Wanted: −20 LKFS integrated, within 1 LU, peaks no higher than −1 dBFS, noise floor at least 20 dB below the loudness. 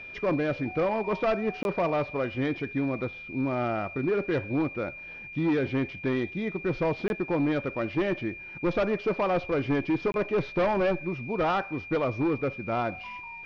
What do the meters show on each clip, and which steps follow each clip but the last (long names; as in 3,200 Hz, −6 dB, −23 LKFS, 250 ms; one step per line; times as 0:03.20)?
number of dropouts 3; longest dropout 21 ms; interfering tone 2,400 Hz; level of the tone −40 dBFS; integrated loudness −28.5 LKFS; sample peak −19.0 dBFS; target loudness −20.0 LKFS
→ repair the gap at 0:01.63/0:07.08/0:10.12, 21 ms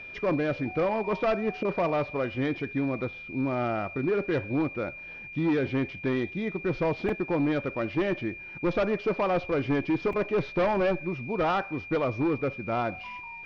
number of dropouts 0; interfering tone 2,400 Hz; level of the tone −40 dBFS
→ notch filter 2,400 Hz, Q 30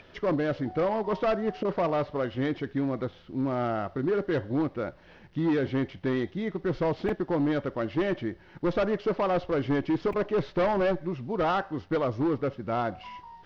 interfering tone none found; integrated loudness −29.0 LKFS; sample peak −15.0 dBFS; target loudness −20.0 LKFS
→ level +9 dB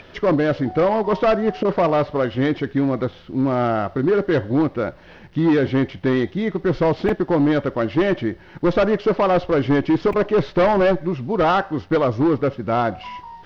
integrated loudness −20.0 LKFS; sample peak −6.0 dBFS; background noise floor −45 dBFS